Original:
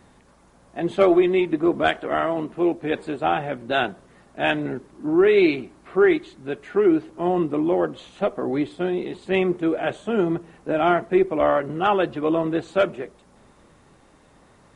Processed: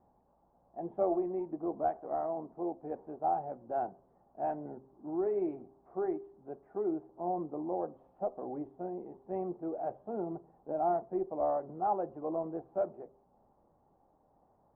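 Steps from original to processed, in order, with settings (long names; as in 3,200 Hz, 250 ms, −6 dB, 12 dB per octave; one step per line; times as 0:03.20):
transistor ladder low-pass 890 Hz, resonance 60%
hum removal 132.8 Hz, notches 4
level −7 dB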